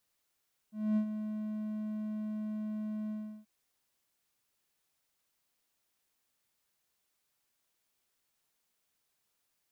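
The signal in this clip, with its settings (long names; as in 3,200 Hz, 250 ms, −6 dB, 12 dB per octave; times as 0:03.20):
note with an ADSR envelope triangle 214 Hz, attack 246 ms, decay 85 ms, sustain −9.5 dB, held 2.38 s, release 354 ms −23 dBFS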